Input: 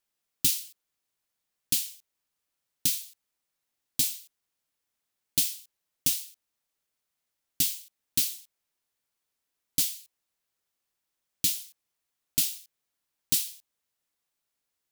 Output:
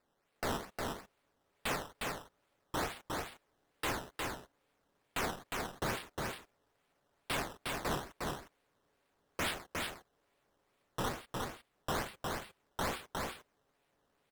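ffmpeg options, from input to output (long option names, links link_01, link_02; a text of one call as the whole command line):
ffmpeg -i in.wav -filter_complex "[0:a]lowpass=frequency=5200:width=0.5412,lowpass=frequency=5200:width=1.3066,equalizer=frequency=460:width=0.86:gain=8.5,aecho=1:1:7.4:0.48,acrusher=samples=14:mix=1:aa=0.000001:lfo=1:lforange=14:lforate=2.2,aeval=exprs='0.015*(abs(mod(val(0)/0.015+3,4)-2)-1)':channel_layout=same,asplit=2[link_01][link_02];[link_02]aecho=0:1:373:0.708[link_03];[link_01][link_03]amix=inputs=2:normalize=0,asetrate=45938,aresample=44100,volume=7.5dB" out.wav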